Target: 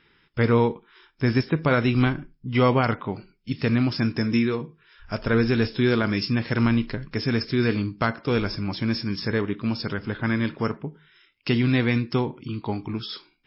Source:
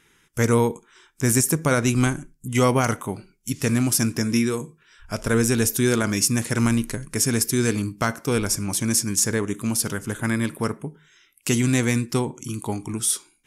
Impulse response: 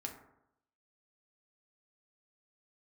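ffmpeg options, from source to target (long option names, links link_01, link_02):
-ar 12000 -c:a libmp3lame -b:a 24k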